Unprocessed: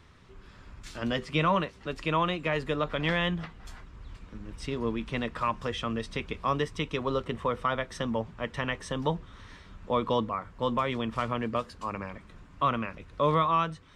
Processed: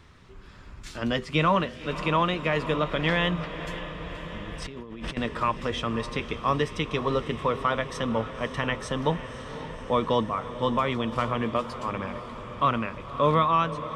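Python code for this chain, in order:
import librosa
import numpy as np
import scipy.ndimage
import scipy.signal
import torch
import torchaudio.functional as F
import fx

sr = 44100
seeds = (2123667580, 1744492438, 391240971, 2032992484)

y = fx.echo_diffused(x, sr, ms=543, feedback_pct=71, wet_db=-12.5)
y = fx.over_compress(y, sr, threshold_db=-41.0, ratio=-1.0, at=(4.62, 5.17))
y = y * librosa.db_to_amplitude(3.0)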